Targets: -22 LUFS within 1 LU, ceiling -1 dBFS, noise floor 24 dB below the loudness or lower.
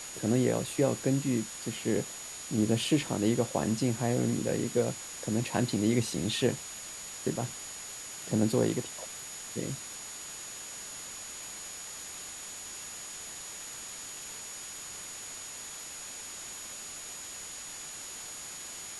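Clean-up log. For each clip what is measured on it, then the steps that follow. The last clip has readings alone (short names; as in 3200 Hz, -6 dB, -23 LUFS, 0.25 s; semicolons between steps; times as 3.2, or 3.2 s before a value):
steady tone 6800 Hz; tone level -43 dBFS; noise floor -43 dBFS; noise floor target -57 dBFS; loudness -33.0 LUFS; peak -13.0 dBFS; loudness target -22.0 LUFS
-> notch 6800 Hz, Q 30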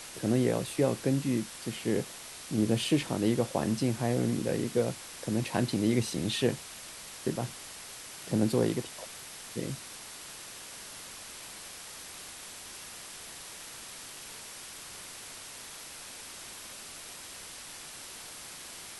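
steady tone none; noise floor -46 dBFS; noise floor target -58 dBFS
-> denoiser 12 dB, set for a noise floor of -46 dBFS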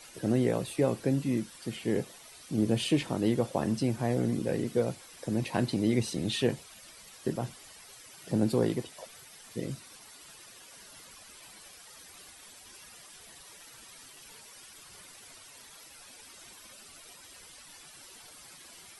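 noise floor -52 dBFS; noise floor target -55 dBFS
-> denoiser 6 dB, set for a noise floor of -52 dBFS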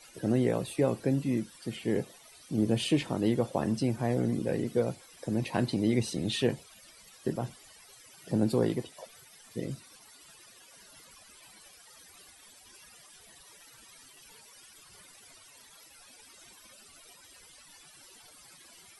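noise floor -56 dBFS; loudness -31.0 LUFS; peak -13.0 dBFS; loudness target -22.0 LUFS
-> gain +9 dB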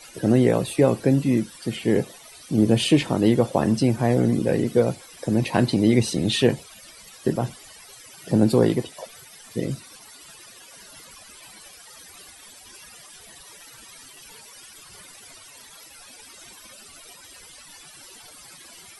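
loudness -22.0 LUFS; peak -4.0 dBFS; noise floor -47 dBFS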